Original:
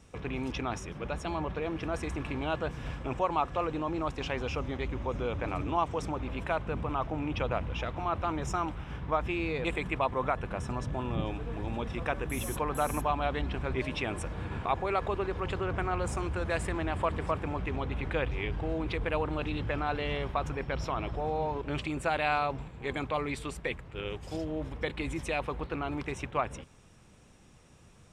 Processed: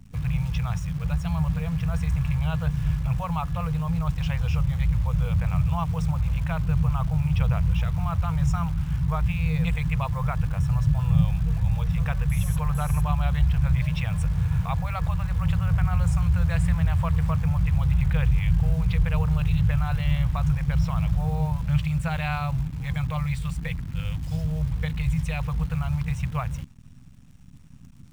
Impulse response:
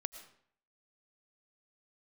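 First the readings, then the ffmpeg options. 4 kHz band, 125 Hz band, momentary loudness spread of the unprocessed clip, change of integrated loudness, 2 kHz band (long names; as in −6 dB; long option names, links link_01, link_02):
0.0 dB, +15.0 dB, 6 LU, +8.0 dB, −0.5 dB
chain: -af "afftfilt=real='re*(1-between(b*sr/4096,180,460))':imag='im*(1-between(b*sr/4096,180,460))':win_size=4096:overlap=0.75,acrusher=bits=9:dc=4:mix=0:aa=0.000001,lowshelf=frequency=350:width_type=q:width=3:gain=13.5"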